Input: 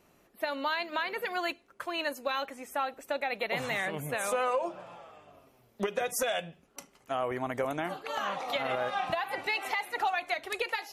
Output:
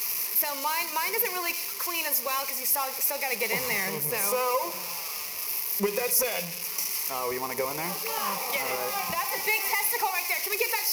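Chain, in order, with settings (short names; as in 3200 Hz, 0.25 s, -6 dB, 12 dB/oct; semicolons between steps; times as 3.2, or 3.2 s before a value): switching spikes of -22.5 dBFS; ripple EQ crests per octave 0.83, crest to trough 12 dB; reverb RT60 0.85 s, pre-delay 38 ms, DRR 14 dB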